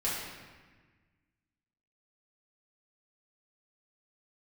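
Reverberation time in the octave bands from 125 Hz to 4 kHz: 2.0 s, 1.9 s, 1.4 s, 1.4 s, 1.5 s, 1.1 s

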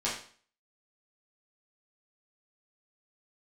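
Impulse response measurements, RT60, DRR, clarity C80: 0.45 s, -8.5 dB, 9.5 dB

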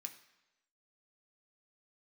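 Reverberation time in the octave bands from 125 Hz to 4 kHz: 0.90 s, 0.95 s, 1.0 s, 1.0 s, 1.0 s, 0.95 s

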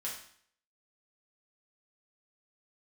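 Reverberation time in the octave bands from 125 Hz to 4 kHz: 0.60 s, 0.60 s, 0.55 s, 0.60 s, 0.60 s, 0.60 s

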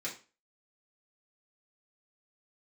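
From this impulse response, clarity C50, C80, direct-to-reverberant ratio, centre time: 10.0 dB, 15.5 dB, -6.0 dB, 20 ms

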